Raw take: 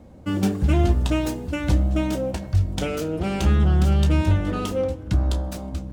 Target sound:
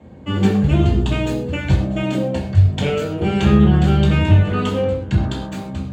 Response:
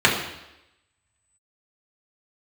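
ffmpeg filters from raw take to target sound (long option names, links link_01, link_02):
-filter_complex "[0:a]asettb=1/sr,asplit=3[link_01][link_02][link_03];[link_01]atrim=end=0.674[link_04];[link_02]atrim=start=0.67:end=3.4,asetpts=PTS-STARTPTS,afade=type=in:duration=0.004:curve=qsin,afade=type=out:start_time=2.726:duration=0.004:curve=qsin,adynamicequalizer=threshold=0.00794:dfrequency=1500:dqfactor=0.83:tfrequency=1500:tqfactor=0.83:attack=5:release=100:ratio=0.375:range=2.5:mode=cutabove:tftype=bell[link_05];[link_03]atrim=start=3.396[link_06];[link_04][link_05]acrossfade=duration=0.004:curve1=hsin:curve2=qsin[link_07];[link_07][link_06]acrossfade=duration=0.004:curve1=qsin:curve2=hsin[link_08];[1:a]atrim=start_sample=2205,atrim=end_sample=6174[link_09];[link_08][link_09]afir=irnorm=-1:irlink=0,volume=-14.5dB"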